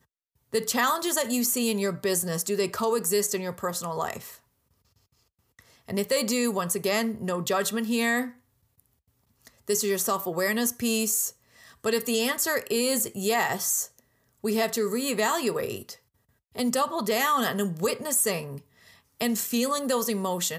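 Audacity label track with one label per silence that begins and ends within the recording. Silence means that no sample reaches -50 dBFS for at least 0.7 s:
4.390000	5.590000	silence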